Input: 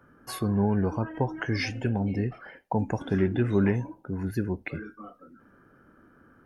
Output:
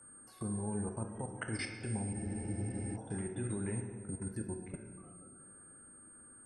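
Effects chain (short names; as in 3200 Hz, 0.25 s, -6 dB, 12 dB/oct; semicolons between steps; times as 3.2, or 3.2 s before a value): compressor 2:1, threshold -49 dBFS, peak gain reduction 16 dB; whine 8600 Hz -49 dBFS; level quantiser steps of 21 dB; on a send at -3.5 dB: reverb RT60 1.9 s, pre-delay 3 ms; on the sum: spectral freeze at 2.17, 0.78 s; gain +3.5 dB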